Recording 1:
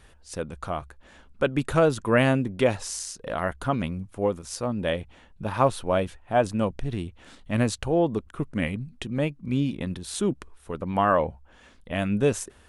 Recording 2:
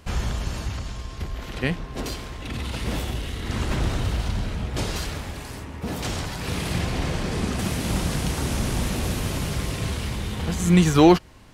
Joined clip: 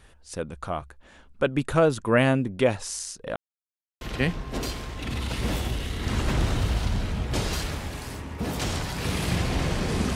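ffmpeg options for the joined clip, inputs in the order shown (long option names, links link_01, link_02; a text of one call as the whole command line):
ffmpeg -i cue0.wav -i cue1.wav -filter_complex "[0:a]apad=whole_dur=10.15,atrim=end=10.15,asplit=2[link_01][link_02];[link_01]atrim=end=3.36,asetpts=PTS-STARTPTS,afade=type=out:start_time=3.356:duration=0.004:curve=hsin[link_03];[link_02]atrim=start=3.36:end=4.01,asetpts=PTS-STARTPTS,volume=0[link_04];[1:a]atrim=start=1.44:end=7.58,asetpts=PTS-STARTPTS,afade=type=in:duration=0.004:curve=hsin[link_05];[link_03][link_04][link_05]concat=n=3:v=0:a=1" out.wav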